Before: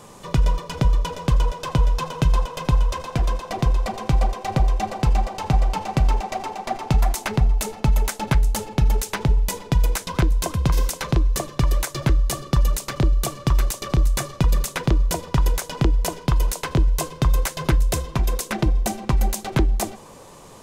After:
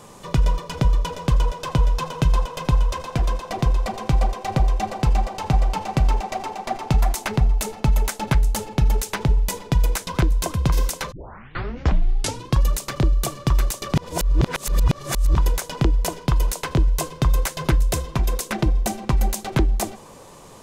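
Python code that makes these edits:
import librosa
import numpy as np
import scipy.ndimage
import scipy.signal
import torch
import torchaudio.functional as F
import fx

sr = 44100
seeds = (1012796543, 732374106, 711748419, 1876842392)

y = fx.edit(x, sr, fx.tape_start(start_s=11.12, length_s=1.53),
    fx.reverse_span(start_s=13.95, length_s=1.42), tone=tone)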